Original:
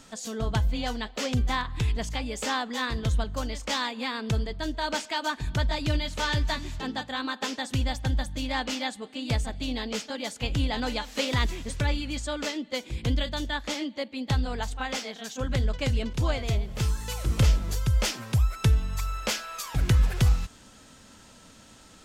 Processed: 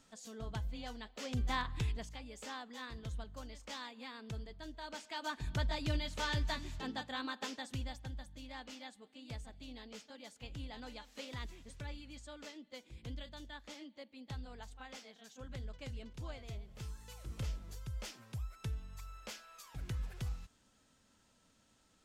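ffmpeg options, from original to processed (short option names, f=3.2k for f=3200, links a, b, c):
-af "volume=1.5dB,afade=t=in:st=1.19:d=0.47:silence=0.375837,afade=t=out:st=1.66:d=0.45:silence=0.298538,afade=t=in:st=4.98:d=0.46:silence=0.398107,afade=t=out:st=7.19:d=0.95:silence=0.316228"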